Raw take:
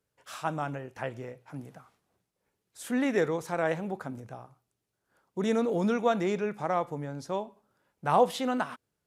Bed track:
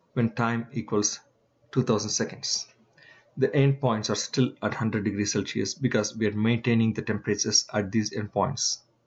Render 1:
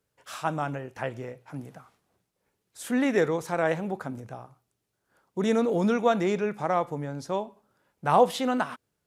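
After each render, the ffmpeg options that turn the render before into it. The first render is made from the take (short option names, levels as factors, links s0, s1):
-af "volume=1.41"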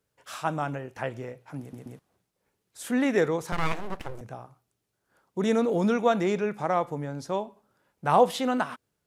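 -filter_complex "[0:a]asettb=1/sr,asplit=3[s0][s1][s2];[s0]atrim=end=3.524[s3];[s1]atrim=start=3.52:end=4.21,asetpts=PTS-STARTPTS,afade=t=in:d=0.004:c=qsin,afade=t=out:st=0.686:d=0.004:c=qsin,aeval=exprs='abs(val(0))':c=same[s4];[s2]atrim=start=4.206[s5];[s3][s4]acrossfade=d=0.004:c1=hsin:c2=qsin[s6];[s6][s5]acrossfade=d=0.004:c1=qsin:c2=hsin,asplit=4[s7][s8][s9][s10];[s7]atrim=end=1.732[s11];[s8]atrim=start=1.598:end=1.732[s12];[s9]atrim=start=1.598:end=1.732[s13];[s10]atrim=start=1.988[s14];[s11][s12]acrossfade=d=0.004:c1=hsin:c2=hsin[s15];[s15][s13]acrossfade=d=0.004:c1=hsin:c2=hsin[s16];[s16][s14]acrossfade=d=0.004:c1=hsin:c2=hsin"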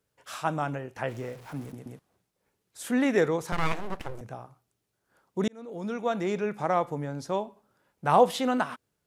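-filter_complex "[0:a]asettb=1/sr,asplit=3[s0][s1][s2];[s0]atrim=end=1.084[s3];[s1]atrim=start=1.08:end=1.72,asetpts=PTS-STARTPTS,afade=t=in:d=0.004:c=qsin,afade=t=out:st=0.636:d=0.004:c=qsin,aeval=exprs='val(0)+0.5*0.00562*sgn(val(0))':c=same[s4];[s2]atrim=start=1.716[s5];[s3][s4]acrossfade=d=0.004:c1=hsin:c2=qsin[s6];[s6][s5]acrossfade=d=0.004:c1=qsin:c2=hsin,asplit=2[s7][s8];[s7]atrim=end=5.48,asetpts=PTS-STARTPTS,afade=t=out:st=5.476:d=0.004:c=hsin[s9];[s8]atrim=start=5.48,asetpts=PTS-STARTPTS,afade=t=in:d=1.16[s10];[s9][s10]concat=n=2:v=0:a=1"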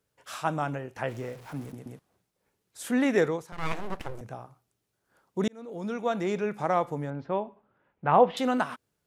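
-filter_complex "[0:a]asettb=1/sr,asplit=3[s0][s1][s2];[s0]atrim=end=7.104[s3];[s1]atrim=start=7.1:end=8.37,asetpts=PTS-STARTPTS,afade=t=in:d=0.004:c=qsin,afade=t=out:st=1.266:d=0.004:c=qsin,lowpass=f=2800:w=0.5412,lowpass=f=2800:w=1.3066[s4];[s2]atrim=start=8.366[s5];[s3][s4]acrossfade=d=0.004:c1=hsin:c2=qsin[s6];[s6][s5]acrossfade=d=0.004:c1=qsin:c2=hsin,asplit=3[s7][s8][s9];[s7]atrim=end=3.47,asetpts=PTS-STARTPTS,afade=t=out:st=3.17:d=0.3:c=qsin:silence=0.223872[s10];[s8]atrim=start=3.47:end=3.55,asetpts=PTS-STARTPTS,volume=0.224[s11];[s9]atrim=start=3.55,asetpts=PTS-STARTPTS,afade=t=in:d=0.3:c=qsin:silence=0.223872[s12];[s10][s11][s12]concat=n=3:v=0:a=1"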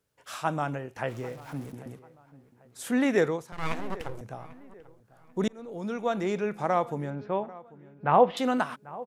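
-filter_complex "[0:a]asplit=2[s0][s1];[s1]adelay=792,lowpass=f=2000:p=1,volume=0.112,asplit=2[s2][s3];[s3]adelay=792,lowpass=f=2000:p=1,volume=0.37,asplit=2[s4][s5];[s5]adelay=792,lowpass=f=2000:p=1,volume=0.37[s6];[s0][s2][s4][s6]amix=inputs=4:normalize=0"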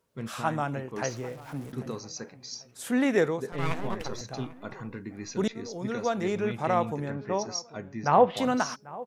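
-filter_complex "[1:a]volume=0.237[s0];[0:a][s0]amix=inputs=2:normalize=0"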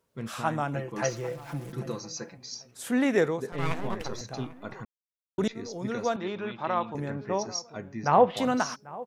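-filter_complex "[0:a]asettb=1/sr,asplit=3[s0][s1][s2];[s0]atrim=end=0.744[s3];[s1]atrim=start=0.74:end=2.38,asetpts=PTS-STARTPTS,afade=t=in:d=0.004:c=qsin,afade=t=out:st=1.636:d=0.004:c=qsin,aecho=1:1:5.9:0.74,atrim=end_sample=72324[s4];[s2]atrim=start=2.376[s5];[s3][s4]acrossfade=d=0.004:c1=hsin:c2=qsin[s6];[s6][s5]acrossfade=d=0.004:c1=qsin:c2=hsin,asettb=1/sr,asplit=3[s7][s8][s9];[s7]atrim=end=6.164[s10];[s8]atrim=start=6.16:end=6.95,asetpts=PTS-STARTPTS,afade=t=in:d=0.004:c=qsin,afade=t=out:st=0.786:d=0.004:c=qsin,highpass=230,equalizer=f=260:t=q:w=4:g=-5,equalizer=f=460:t=q:w=4:g=-9,equalizer=f=730:t=q:w=4:g=-5,equalizer=f=1000:t=q:w=4:g=3,equalizer=f=2100:t=q:w=4:g=-6,equalizer=f=3700:t=q:w=4:g=4,lowpass=f=4100:w=0.5412,lowpass=f=4100:w=1.3066[s11];[s9]atrim=start=6.946[s12];[s10][s11]acrossfade=d=0.004:c1=hsin:c2=qsin[s13];[s13][s12]acrossfade=d=0.004:c1=qsin:c2=hsin,asplit=3[s14][s15][s16];[s14]atrim=end=4.85,asetpts=PTS-STARTPTS,afade=t=out:st=4.846:d=0.004:c=hsin[s17];[s15]atrim=start=4.85:end=5.38,asetpts=PTS-STARTPTS,volume=0[s18];[s16]atrim=start=5.38,asetpts=PTS-STARTPTS,afade=t=in:d=0.004:c=hsin[s19];[s17][s18][s19]concat=n=3:v=0:a=1"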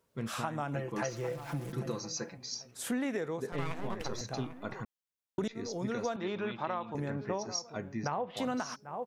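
-af "alimiter=limit=0.15:level=0:latency=1:release=412,acompressor=threshold=0.0316:ratio=10"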